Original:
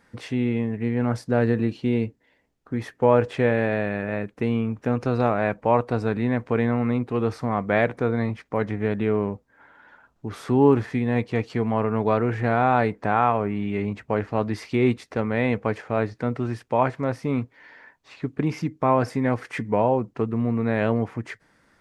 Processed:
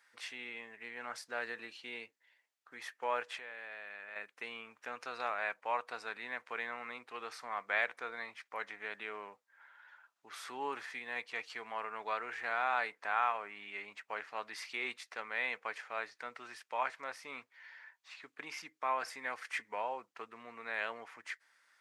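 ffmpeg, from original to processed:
-filter_complex "[0:a]asettb=1/sr,asplit=3[s0][s1][s2];[s0]atrim=end=3.234[s3];[s1]atrim=start=3.23:end=4.16,asetpts=PTS-STARTPTS,afade=t=in:d=0.004:c=qsin,afade=t=out:st=0.926:d=0.004:c=qsin,acompressor=threshold=0.0282:ratio=3:attack=3.2:release=140:knee=1:detection=peak[s4];[s2]atrim=start=4.156[s5];[s3][s4]acrossfade=d=0.004:c1=hsin:c2=qsin[s6];[s6][s5]acrossfade=d=0.004:c1=qsin:c2=hsin,highpass=1400,volume=0.631"

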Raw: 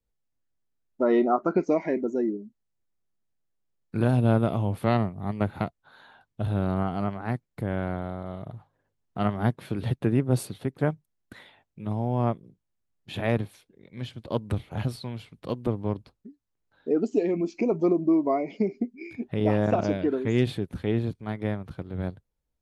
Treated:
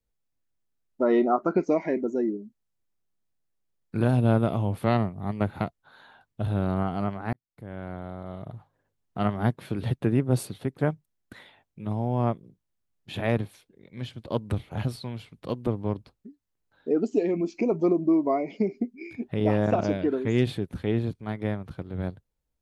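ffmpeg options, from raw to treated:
-filter_complex "[0:a]asplit=2[s0][s1];[s0]atrim=end=7.33,asetpts=PTS-STARTPTS,afade=t=out:st=7.326:d=0.004:c=hsin[s2];[s1]atrim=start=7.33,asetpts=PTS-STARTPTS,afade=t=in:d=1.19[s3];[s2][s3]concat=n=2:v=0:a=1"

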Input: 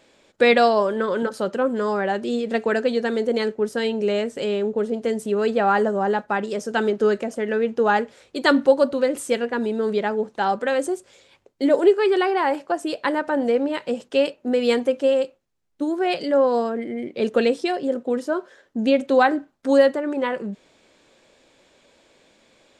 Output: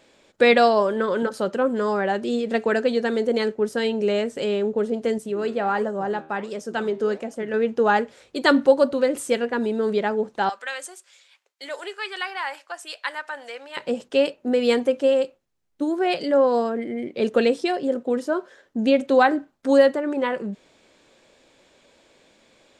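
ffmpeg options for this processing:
-filter_complex "[0:a]asettb=1/sr,asplit=3[s0][s1][s2];[s0]atrim=end=5.184[s3];[s1]atrim=start=5.18:end=7.54,asetpts=PTS-STARTPTS,afade=t=in:d=0.004:c=qsin,afade=t=out:st=2.356:d=0.004:c=qsin,flanger=delay=3.5:depth=9.2:regen=86:speed=1.4:shape=sinusoidal[s4];[s2]atrim=start=7.536[s5];[s3][s4]acrossfade=d=0.004:c1=hsin:c2=qsin[s6];[s6][s5]acrossfade=d=0.004:c1=qsin:c2=hsin,asettb=1/sr,asplit=3[s7][s8][s9];[s7]atrim=end=10.494[s10];[s8]atrim=start=10.49:end=13.77,asetpts=PTS-STARTPTS,afade=t=in:d=0.004:c=qsin,afade=t=out:st=3.276:d=0.004:c=qsin,highpass=1400[s11];[s9]atrim=start=13.766[s12];[s10][s11]acrossfade=d=0.004:c1=hsin:c2=qsin[s13];[s13][s12]acrossfade=d=0.004:c1=qsin:c2=hsin"

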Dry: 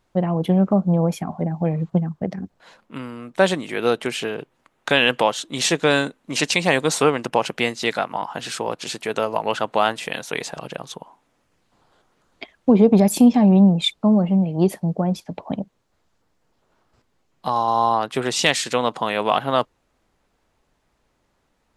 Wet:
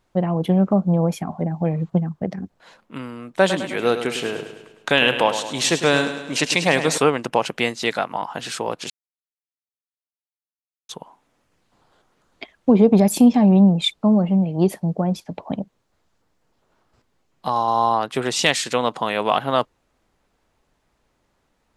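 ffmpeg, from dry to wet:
-filter_complex "[0:a]asettb=1/sr,asplit=3[s0][s1][s2];[s0]atrim=end=3.284[s3];[s1]atrim=start=3.28:end=6.98,asetpts=PTS-STARTPTS,afade=t=in:d=0.004:c=qsin,afade=t=out:st=3.696:d=0.004:c=qsin,aecho=1:1:104|208|312|416|520|624:0.316|0.171|0.0922|0.0498|0.0269|0.0145,atrim=end_sample=163170[s4];[s2]atrim=start=6.976[s5];[s3][s4]acrossfade=d=0.004:c1=hsin:c2=qsin[s6];[s6][s5]acrossfade=d=0.004:c1=qsin:c2=hsin,asplit=3[s7][s8][s9];[s7]atrim=end=8.9,asetpts=PTS-STARTPTS,afade=t=out:st=8.896:d=0.004:c=hsin[s10];[s8]atrim=start=8.9:end=10.89,asetpts=PTS-STARTPTS,volume=0[s11];[s9]atrim=start=10.89,asetpts=PTS-STARTPTS,afade=t=in:d=0.004:c=hsin[s12];[s10][s11][s12]concat=n=3:v=0:a=1"

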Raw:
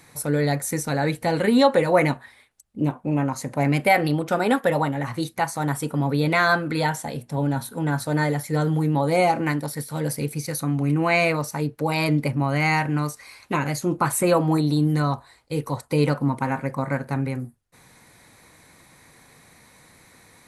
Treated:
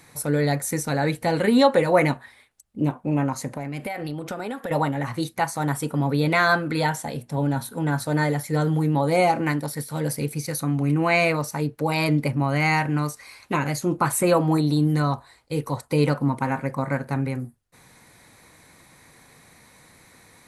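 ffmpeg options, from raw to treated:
-filter_complex "[0:a]asettb=1/sr,asplit=3[s0][s1][s2];[s0]atrim=end=3.504[s3];[s1]atrim=start=3.5:end=4.71,asetpts=PTS-STARTPTS,afade=t=in:d=0.004:c=qsin,afade=t=out:st=1.206:d=0.004:c=qsin,acompressor=threshold=0.0501:ratio=16:attack=3.2:release=140:knee=1:detection=peak[s4];[s2]atrim=start=4.706[s5];[s3][s4]acrossfade=d=0.004:c1=hsin:c2=qsin[s6];[s6][s5]acrossfade=d=0.004:c1=qsin:c2=hsin"

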